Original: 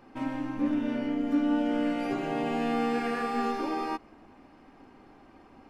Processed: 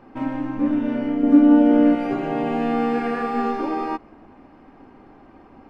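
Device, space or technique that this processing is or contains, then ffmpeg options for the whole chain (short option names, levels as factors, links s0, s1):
through cloth: -filter_complex "[0:a]asettb=1/sr,asplit=3[s0][s1][s2];[s0]atrim=end=1.234[s3];[s1]atrim=start=1.23:end=1.95,asetpts=PTS-STARTPTS,afade=t=in:d=0.004:c=qsin,afade=t=out:st=0.716:d=0.004:c=qsin,equalizer=f=350:t=o:w=2.1:g=7[s4];[s2]atrim=start=1.946[s5];[s3][s4]acrossfade=d=0.004:c1=hsin:c2=qsin[s6];[s6][s5]acrossfade=d=0.004:c1=qsin:c2=hsin,highshelf=f=3300:g=-14,volume=2.24"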